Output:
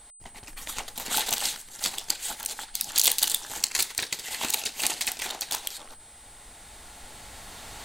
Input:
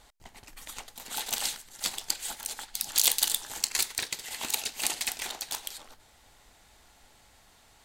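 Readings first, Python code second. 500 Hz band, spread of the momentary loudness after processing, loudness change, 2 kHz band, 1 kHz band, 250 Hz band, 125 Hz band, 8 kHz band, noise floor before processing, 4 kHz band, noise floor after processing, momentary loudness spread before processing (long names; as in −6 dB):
+4.0 dB, 22 LU, +2.5 dB, +3.0 dB, +4.5 dB, +4.5 dB, +5.5 dB, +3.0 dB, −60 dBFS, +3.0 dB, −50 dBFS, 19 LU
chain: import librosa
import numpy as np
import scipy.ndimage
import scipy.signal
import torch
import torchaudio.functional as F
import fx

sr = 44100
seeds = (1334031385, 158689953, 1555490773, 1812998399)

y = fx.recorder_agc(x, sr, target_db=-14.0, rise_db_per_s=6.8, max_gain_db=30)
y = y + 10.0 ** (-51.0 / 20.0) * np.sin(2.0 * np.pi * 8100.0 * np.arange(len(y)) / sr)
y = y * 10.0 ** (2.0 / 20.0)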